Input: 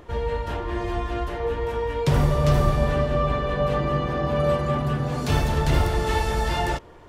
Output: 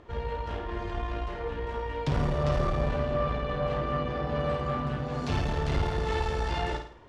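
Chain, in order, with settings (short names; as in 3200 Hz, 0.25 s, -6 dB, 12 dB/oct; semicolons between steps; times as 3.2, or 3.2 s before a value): on a send: flutter echo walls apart 9 m, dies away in 0.48 s; on the sum: tube stage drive 15 dB, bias 0.5; LPF 5400 Hz 12 dB/oct; gain -4.5 dB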